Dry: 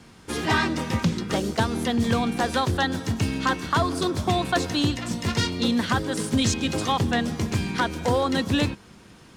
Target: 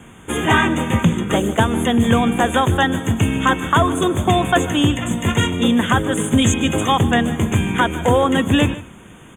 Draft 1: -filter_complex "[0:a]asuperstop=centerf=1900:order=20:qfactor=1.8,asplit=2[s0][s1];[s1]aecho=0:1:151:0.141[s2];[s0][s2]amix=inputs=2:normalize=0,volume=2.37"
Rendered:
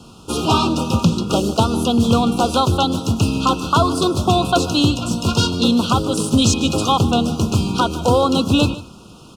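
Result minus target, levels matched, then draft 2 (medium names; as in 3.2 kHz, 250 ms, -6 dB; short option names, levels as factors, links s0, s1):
2 kHz band -10.0 dB
-filter_complex "[0:a]asuperstop=centerf=4800:order=20:qfactor=1.8,asplit=2[s0][s1];[s1]aecho=0:1:151:0.141[s2];[s0][s2]amix=inputs=2:normalize=0,volume=2.37"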